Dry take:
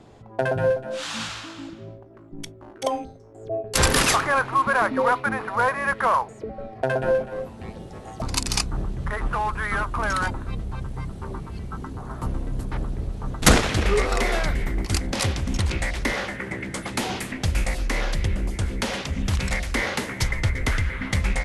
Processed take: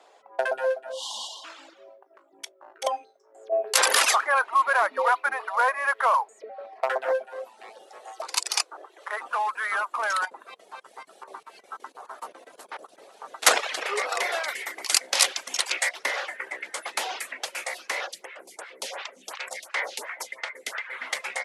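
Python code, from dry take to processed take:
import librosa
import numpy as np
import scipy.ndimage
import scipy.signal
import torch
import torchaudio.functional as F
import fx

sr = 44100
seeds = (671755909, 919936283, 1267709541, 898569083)

y = fx.spec_erase(x, sr, start_s=0.92, length_s=0.52, low_hz=1100.0, high_hz=2800.0)
y = fx.env_flatten(y, sr, amount_pct=50, at=(3.52, 4.05))
y = fx.doppler_dist(y, sr, depth_ms=0.33, at=(6.57, 7.13))
y = fx.brickwall_highpass(y, sr, low_hz=290.0, at=(8.02, 9.2))
y = fx.chopper(y, sr, hz=fx.line((10.23, 3.2), (13.0, 11.0)), depth_pct=65, duty_pct=80, at=(10.23, 13.0), fade=0.02)
y = fx.high_shelf(y, sr, hz=2000.0, db=9.5, at=(14.48, 15.89))
y = fx.stagger_phaser(y, sr, hz=2.8, at=(18.06, 20.89), fade=0.02)
y = scipy.signal.sosfilt(scipy.signal.butter(4, 540.0, 'highpass', fs=sr, output='sos'), y)
y = fx.dereverb_blind(y, sr, rt60_s=0.57)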